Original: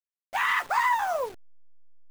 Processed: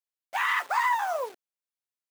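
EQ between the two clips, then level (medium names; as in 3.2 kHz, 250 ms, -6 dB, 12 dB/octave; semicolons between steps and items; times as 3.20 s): high-pass 400 Hz 12 dB/octave; -1.0 dB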